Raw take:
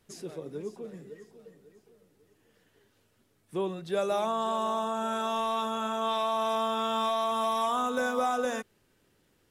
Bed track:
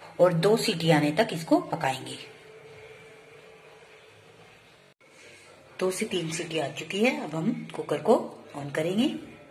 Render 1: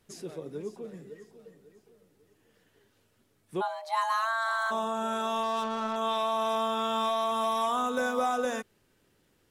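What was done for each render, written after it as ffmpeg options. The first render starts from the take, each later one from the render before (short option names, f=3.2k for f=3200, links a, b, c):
-filter_complex "[0:a]asplit=3[a][b][c];[a]afade=t=out:st=3.6:d=0.02[d];[b]afreqshift=450,afade=t=in:st=3.6:d=0.02,afade=t=out:st=4.7:d=0.02[e];[c]afade=t=in:st=4.7:d=0.02[f];[d][e][f]amix=inputs=3:normalize=0,asettb=1/sr,asplit=3[g][h][i];[g]atrim=end=5.434[j];[h]atrim=start=5.43:end=5.96,asetpts=PTS-STARTPTS,afade=t=in:d=0.004:c=qsin,afade=t=out:st=0.526:d=0.004:c=qsin,adynamicsmooth=sensitivity=7.5:basefreq=910[k];[i]atrim=start=5.956[l];[j][k]acrossfade=d=0.004:c1=hsin:c2=qsin[m];[m][l]acrossfade=d=0.004:c1=qsin:c2=hsin"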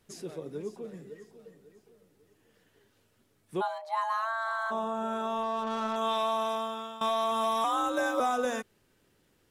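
-filter_complex "[0:a]asettb=1/sr,asplit=3[a][b][c];[a]atrim=end=3.784[d];[b]atrim=start=3.78:end=5.67,asetpts=PTS-STARTPTS,afade=t=in:d=0.004:c=qsin,afade=t=out:st=1.886:d=0.004:c=qsin,highshelf=f=2.1k:g=-10.5[e];[c]atrim=start=5.666[f];[d][e]acrossfade=d=0.004:c1=hsin:c2=qsin[g];[g][f]acrossfade=d=0.004:c1=qsin:c2=hsin,asettb=1/sr,asplit=3[h][i][j];[h]atrim=end=7.644[k];[i]atrim=start=7.64:end=8.2,asetpts=PTS-STARTPTS,afade=t=in:d=0.004:c=qsin,afade=t=out:st=0.556:d=0.004:c=qsin,afreqshift=58[l];[j]atrim=start=8.196[m];[k][l]acrossfade=d=0.004:c1=hsin:c2=qsin[n];[n][m]acrossfade=d=0.004:c1=qsin:c2=hsin,asplit=2[o][p];[o]atrim=end=7.01,asetpts=PTS-STARTPTS,afade=t=out:st=6.3:d=0.71:silence=0.133352[q];[p]atrim=start=7.01,asetpts=PTS-STARTPTS,afade=t=in:d=0.004:c=hsin:silence=0.133352[r];[q][r]concat=n=2:v=0:a=1"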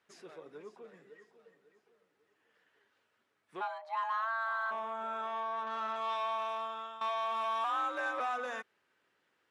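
-af "asoftclip=type=tanh:threshold=-25.5dB,bandpass=f=1.5k:t=q:w=0.96:csg=0"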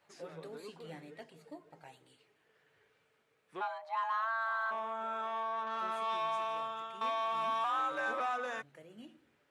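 -filter_complex "[1:a]volume=-27.5dB[a];[0:a][a]amix=inputs=2:normalize=0"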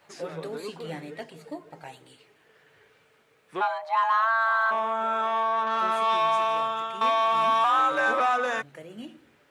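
-af "volume=11.5dB"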